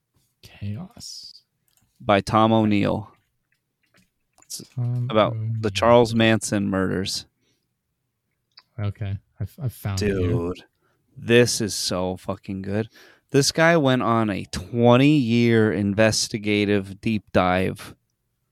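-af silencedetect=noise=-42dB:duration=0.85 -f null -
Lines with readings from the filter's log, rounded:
silence_start: 3.08
silence_end: 4.38 | silence_duration: 1.31
silence_start: 7.23
silence_end: 8.58 | silence_duration: 1.35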